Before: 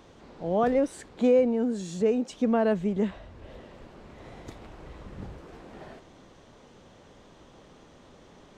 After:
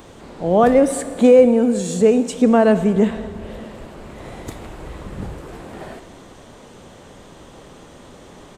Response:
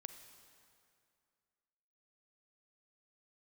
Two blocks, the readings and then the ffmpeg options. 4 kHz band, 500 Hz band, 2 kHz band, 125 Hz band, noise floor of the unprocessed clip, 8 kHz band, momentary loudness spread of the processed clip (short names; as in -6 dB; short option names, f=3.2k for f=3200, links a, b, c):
+10.5 dB, +11.0 dB, +11.0 dB, +11.0 dB, -54 dBFS, +16.0 dB, 23 LU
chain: -filter_complex "[0:a]aresample=32000,aresample=44100,asplit=2[a][b];[1:a]atrim=start_sample=2205[c];[b][c]afir=irnorm=-1:irlink=0,volume=11.5dB[d];[a][d]amix=inputs=2:normalize=0,aexciter=amount=3.3:drive=4.2:freq=7.6k,volume=1dB"